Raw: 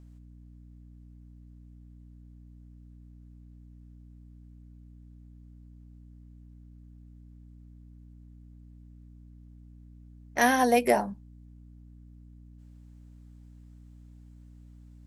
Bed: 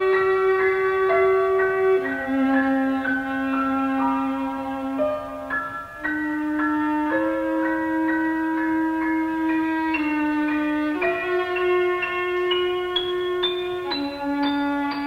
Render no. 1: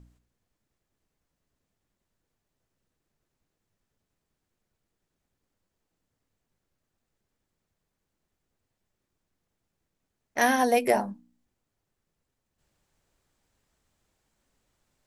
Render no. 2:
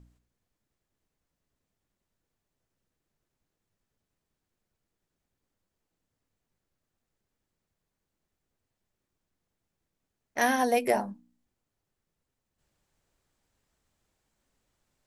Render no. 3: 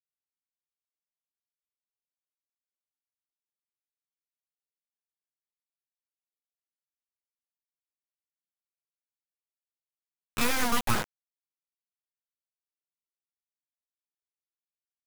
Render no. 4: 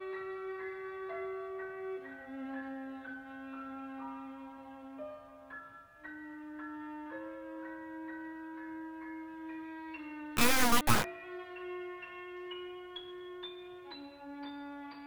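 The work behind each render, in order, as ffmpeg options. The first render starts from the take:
-af "bandreject=f=60:t=h:w=4,bandreject=f=120:t=h:w=4,bandreject=f=180:t=h:w=4,bandreject=f=240:t=h:w=4,bandreject=f=300:t=h:w=4"
-af "volume=-2.5dB"
-af "aeval=exprs='abs(val(0))':c=same,acrusher=bits=4:mix=0:aa=0.000001"
-filter_complex "[1:a]volume=-22dB[a];[0:a][a]amix=inputs=2:normalize=0"

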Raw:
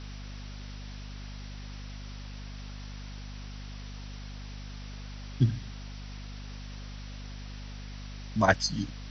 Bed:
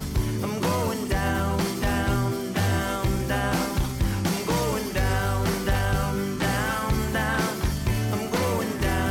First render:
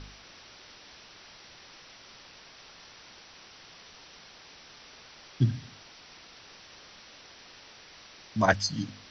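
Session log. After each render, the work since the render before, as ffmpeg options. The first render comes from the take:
-af "bandreject=f=50:t=h:w=4,bandreject=f=100:t=h:w=4,bandreject=f=150:t=h:w=4,bandreject=f=200:t=h:w=4,bandreject=f=250:t=h:w=4"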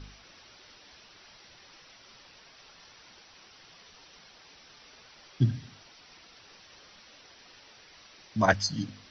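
-af "afftdn=nr=6:nf=-52"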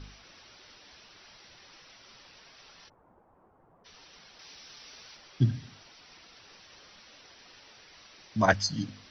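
-filter_complex "[0:a]asplit=3[a][b][c];[a]afade=t=out:st=2.88:d=0.02[d];[b]lowpass=f=1k:w=0.5412,lowpass=f=1k:w=1.3066,afade=t=in:st=2.88:d=0.02,afade=t=out:st=3.84:d=0.02[e];[c]afade=t=in:st=3.84:d=0.02[f];[d][e][f]amix=inputs=3:normalize=0,asettb=1/sr,asplit=3[g][h][i];[g]atrim=end=4.394[j];[h]atrim=start=4.39:end=5.17,asetpts=PTS-STARTPTS,afade=t=in:d=0.004:c=qsin,afade=t=out:st=0.776:d=0.004:c=qsin,highshelf=f=3.6k:g=9[k];[i]atrim=start=5.166[l];[j][k]acrossfade=d=0.004:c1=hsin:c2=qsin[m];[m][l]acrossfade=d=0.004:c1=qsin:c2=hsin"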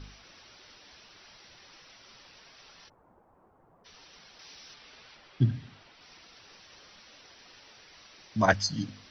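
-filter_complex "[0:a]asettb=1/sr,asplit=3[a][b][c];[a]atrim=end=4.744[d];[b]atrim=start=4.74:end=6.01,asetpts=PTS-STARTPTS,afade=t=in:d=0.004:c=qsin,afade=t=out:st=1.266:d=0.004:c=qsin,lowpass=3.7k[e];[c]atrim=start=6.006[f];[d][e]acrossfade=d=0.004:c1=hsin:c2=qsin[g];[g][f]acrossfade=d=0.004:c1=qsin:c2=hsin"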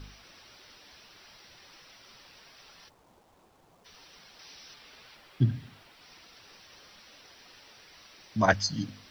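-af "acrusher=bits=10:mix=0:aa=0.000001"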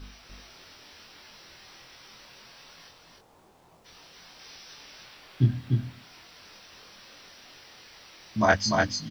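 -filter_complex "[0:a]asplit=2[a][b];[b]adelay=24,volume=-2.5dB[c];[a][c]amix=inputs=2:normalize=0,asplit=2[d][e];[e]aecho=0:1:297:0.668[f];[d][f]amix=inputs=2:normalize=0"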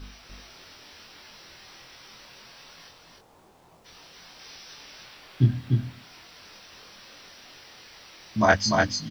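-af "volume=2dB"

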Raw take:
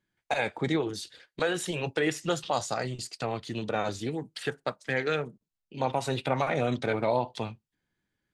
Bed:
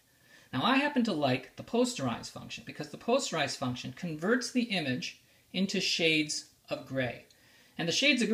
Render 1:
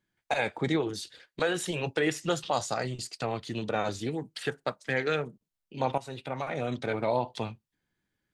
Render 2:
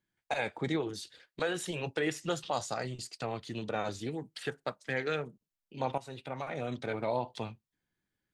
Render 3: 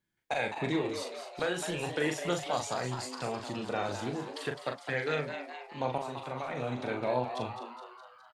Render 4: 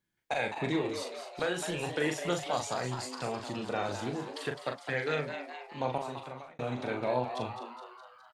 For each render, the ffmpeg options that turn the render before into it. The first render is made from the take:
-filter_complex "[0:a]asplit=2[a][b];[a]atrim=end=5.98,asetpts=PTS-STARTPTS,afade=t=out:st=5.976:d=0.004:c=hsin:silence=0.237137[c];[b]atrim=start=5.98,asetpts=PTS-STARTPTS,afade=t=in:d=1.38:silence=0.237137[d];[c][d]concat=n=2:v=0:a=1"
-af "volume=-4.5dB"
-filter_complex "[0:a]asplit=2[a][b];[b]adelay=40,volume=-5.5dB[c];[a][c]amix=inputs=2:normalize=0,asplit=8[d][e][f][g][h][i][j][k];[e]adelay=208,afreqshift=130,volume=-9dB[l];[f]adelay=416,afreqshift=260,volume=-13.9dB[m];[g]adelay=624,afreqshift=390,volume=-18.8dB[n];[h]adelay=832,afreqshift=520,volume=-23.6dB[o];[i]adelay=1040,afreqshift=650,volume=-28.5dB[p];[j]adelay=1248,afreqshift=780,volume=-33.4dB[q];[k]adelay=1456,afreqshift=910,volume=-38.3dB[r];[d][l][m][n][o][p][q][r]amix=inputs=8:normalize=0"
-filter_complex "[0:a]asplit=2[a][b];[a]atrim=end=6.59,asetpts=PTS-STARTPTS,afade=t=out:st=6.12:d=0.47[c];[b]atrim=start=6.59,asetpts=PTS-STARTPTS,afade=t=in:d=0.004:c=hsin[d];[c][d]concat=n=2:v=0:a=1"

